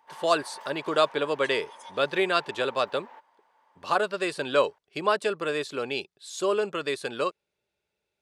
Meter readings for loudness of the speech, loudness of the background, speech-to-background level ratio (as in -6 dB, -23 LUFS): -27.5 LUFS, -46.5 LUFS, 19.0 dB